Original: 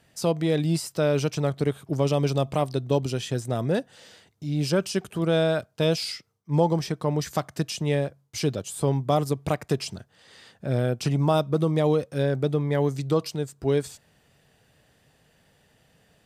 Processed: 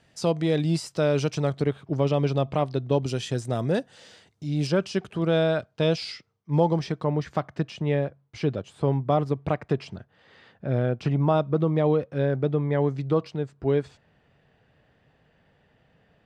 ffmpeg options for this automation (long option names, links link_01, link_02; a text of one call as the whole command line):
ffmpeg -i in.wav -af "asetnsamples=nb_out_samples=441:pad=0,asendcmd='1.62 lowpass f 3500;3.06 lowpass f 8500;4.67 lowpass f 4300;7.04 lowpass f 2500',lowpass=6900" out.wav